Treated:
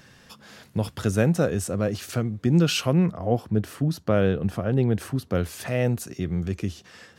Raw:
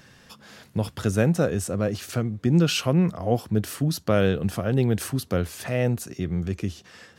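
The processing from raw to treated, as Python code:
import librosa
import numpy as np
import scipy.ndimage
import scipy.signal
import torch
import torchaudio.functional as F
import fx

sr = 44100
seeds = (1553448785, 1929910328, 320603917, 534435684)

y = fx.high_shelf(x, sr, hz=2900.0, db=-10.0, at=(3.06, 5.35))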